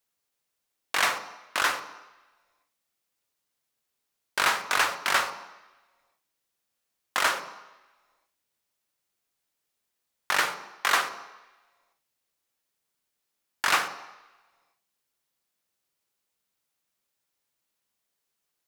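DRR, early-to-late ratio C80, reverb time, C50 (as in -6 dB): 9.0 dB, 12.5 dB, 1.1 s, 10.5 dB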